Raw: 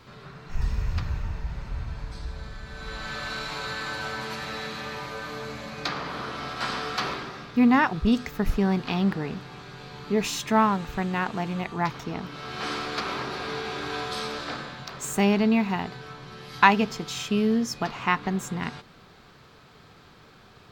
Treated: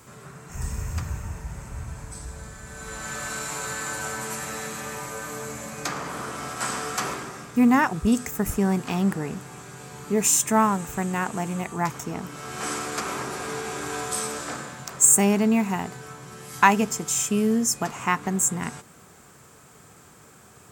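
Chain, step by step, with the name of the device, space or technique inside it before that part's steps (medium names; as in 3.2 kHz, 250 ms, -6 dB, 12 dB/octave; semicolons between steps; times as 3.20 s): budget condenser microphone (high-pass 64 Hz; resonant high shelf 5.8 kHz +12.5 dB, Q 3); trim +1 dB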